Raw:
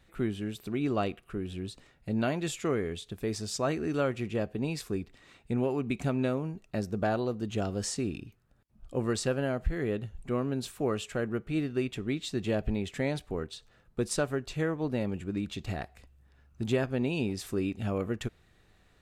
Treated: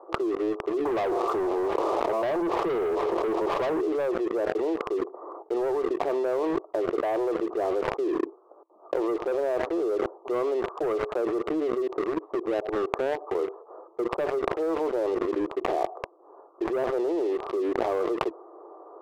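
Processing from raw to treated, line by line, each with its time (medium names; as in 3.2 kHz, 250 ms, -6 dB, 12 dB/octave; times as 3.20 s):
0.85–3.81 s: power-law waveshaper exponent 0.35
11.87–13.35 s: compression 20:1, threshold -40 dBFS
whole clip: Chebyshev band-pass 330–1200 Hz, order 5; waveshaping leveller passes 3; level flattener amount 100%; trim -8 dB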